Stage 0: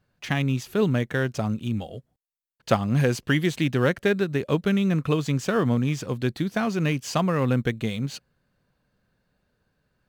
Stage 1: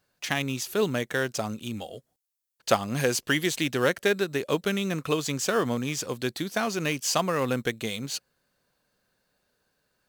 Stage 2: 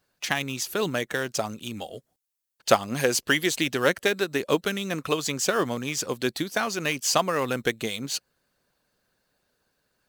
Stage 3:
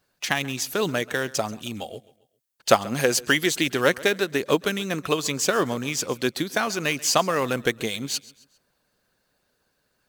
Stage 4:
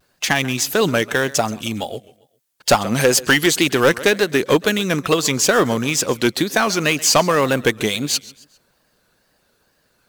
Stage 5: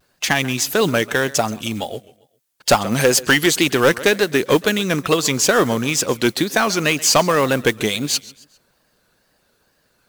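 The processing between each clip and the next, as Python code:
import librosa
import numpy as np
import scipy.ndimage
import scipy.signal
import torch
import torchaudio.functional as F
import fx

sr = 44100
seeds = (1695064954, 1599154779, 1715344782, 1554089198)

y1 = fx.bass_treble(x, sr, bass_db=-11, treble_db=9)
y2 = fx.hpss(y1, sr, part='harmonic', gain_db=-7)
y2 = y2 * 10.0 ** (3.5 / 20.0)
y3 = fx.echo_feedback(y2, sr, ms=134, feedback_pct=41, wet_db=-20.5)
y3 = y3 * 10.0 ** (2.0 / 20.0)
y4 = 10.0 ** (-14.5 / 20.0) * np.tanh(y3 / 10.0 ** (-14.5 / 20.0))
y4 = fx.wow_flutter(y4, sr, seeds[0], rate_hz=2.1, depth_cents=87.0)
y4 = y4 * 10.0 ** (8.5 / 20.0)
y5 = fx.mod_noise(y4, sr, seeds[1], snr_db=24)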